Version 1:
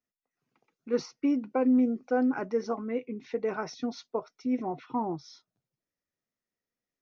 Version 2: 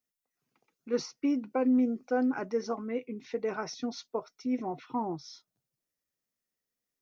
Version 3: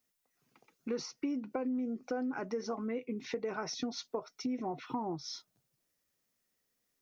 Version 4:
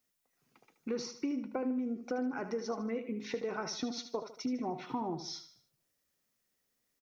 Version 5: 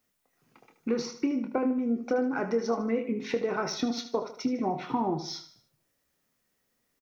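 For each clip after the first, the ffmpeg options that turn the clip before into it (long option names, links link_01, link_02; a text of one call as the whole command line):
ffmpeg -i in.wav -af "highshelf=frequency=5000:gain=9.5,volume=-2dB" out.wav
ffmpeg -i in.wav -filter_complex "[0:a]asplit=2[link_01][link_02];[link_02]alimiter=level_in=3dB:limit=-24dB:level=0:latency=1:release=27,volume=-3dB,volume=2dB[link_03];[link_01][link_03]amix=inputs=2:normalize=0,acompressor=threshold=-34dB:ratio=5" out.wav
ffmpeg -i in.wav -af "aecho=1:1:76|152|228|304:0.299|0.125|0.0527|0.0221" out.wav
ffmpeg -i in.wav -filter_complex "[0:a]asplit=2[link_01][link_02];[link_02]adelay=26,volume=-9dB[link_03];[link_01][link_03]amix=inputs=2:normalize=0,asplit=2[link_04][link_05];[link_05]adynamicsmooth=sensitivity=7.5:basefreq=3600,volume=-3dB[link_06];[link_04][link_06]amix=inputs=2:normalize=0,volume=3dB" out.wav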